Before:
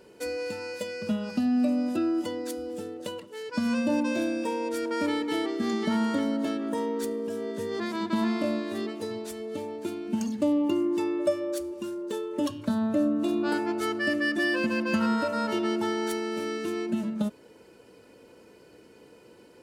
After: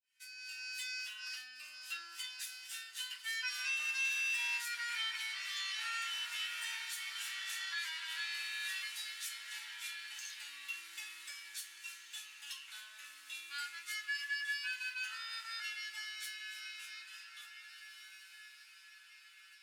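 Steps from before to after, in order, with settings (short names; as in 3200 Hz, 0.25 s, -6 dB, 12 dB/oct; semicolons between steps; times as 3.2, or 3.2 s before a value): opening faded in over 0.96 s; Doppler pass-by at 5.41, 9 m/s, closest 5.7 m; compressor 2.5:1, threshold -42 dBFS, peak gain reduction 12 dB; soft clip -36.5 dBFS, distortion -16 dB; inverse Chebyshev high-pass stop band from 550 Hz, stop band 60 dB; diffused feedback echo 1.888 s, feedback 44%, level -11.5 dB; limiter -51.5 dBFS, peak gain reduction 11.5 dB; shoebox room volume 120 m³, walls furnished, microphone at 2.7 m; gain +15.5 dB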